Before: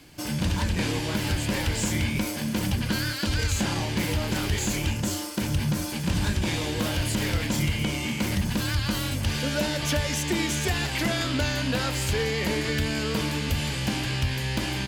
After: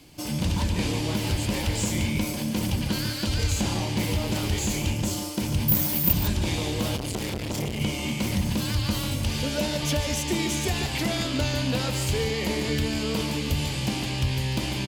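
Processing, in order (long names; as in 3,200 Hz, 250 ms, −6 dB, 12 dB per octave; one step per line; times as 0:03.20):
parametric band 1,600 Hz −8 dB 0.63 octaves
0:05.68–0:06.13: bad sample-rate conversion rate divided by 3×, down none, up zero stuff
slap from a distant wall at 25 metres, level −8 dB
0:06.96–0:07.81: saturating transformer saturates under 590 Hz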